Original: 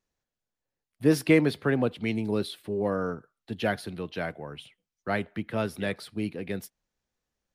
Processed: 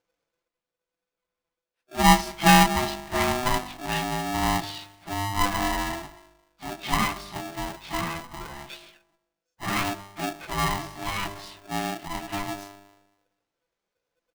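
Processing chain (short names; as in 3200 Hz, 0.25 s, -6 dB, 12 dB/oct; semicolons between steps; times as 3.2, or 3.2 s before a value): Bessel low-pass 4500 Hz; comb 5.9 ms, depth 38%; de-hum 49.79 Hz, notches 24; plain phase-vocoder stretch 1.9×; polarity switched at an audio rate 500 Hz; gain +4.5 dB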